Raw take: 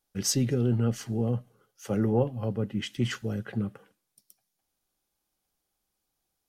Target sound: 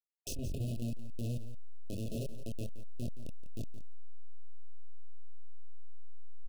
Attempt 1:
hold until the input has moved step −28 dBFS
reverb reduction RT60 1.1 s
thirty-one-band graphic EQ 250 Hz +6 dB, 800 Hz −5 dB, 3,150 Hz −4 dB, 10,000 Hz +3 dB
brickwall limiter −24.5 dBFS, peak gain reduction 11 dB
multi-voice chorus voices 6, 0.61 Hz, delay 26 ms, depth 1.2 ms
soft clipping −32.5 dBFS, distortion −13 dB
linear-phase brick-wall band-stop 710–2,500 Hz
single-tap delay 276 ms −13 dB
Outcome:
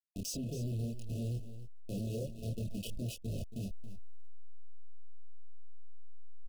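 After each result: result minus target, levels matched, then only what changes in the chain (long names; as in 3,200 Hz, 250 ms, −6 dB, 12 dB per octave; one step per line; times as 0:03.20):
echo 105 ms late; hold until the input has moved: distortion −15 dB
change: single-tap delay 171 ms −13 dB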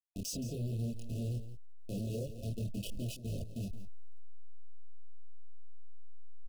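hold until the input has moved: distortion −15 dB
change: hold until the input has moved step −18.5 dBFS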